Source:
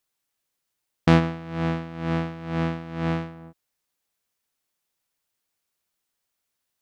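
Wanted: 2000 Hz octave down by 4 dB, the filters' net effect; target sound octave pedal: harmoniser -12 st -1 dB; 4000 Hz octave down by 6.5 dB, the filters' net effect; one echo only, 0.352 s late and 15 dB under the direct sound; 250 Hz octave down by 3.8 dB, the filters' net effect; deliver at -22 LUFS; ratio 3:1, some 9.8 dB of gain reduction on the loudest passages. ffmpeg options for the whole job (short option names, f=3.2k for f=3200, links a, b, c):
-filter_complex "[0:a]equalizer=f=250:t=o:g=-7,equalizer=f=2k:t=o:g=-3.5,equalizer=f=4k:t=o:g=-7.5,acompressor=threshold=-28dB:ratio=3,aecho=1:1:352:0.178,asplit=2[a][b];[b]asetrate=22050,aresample=44100,atempo=2,volume=-1dB[c];[a][c]amix=inputs=2:normalize=0,volume=10dB"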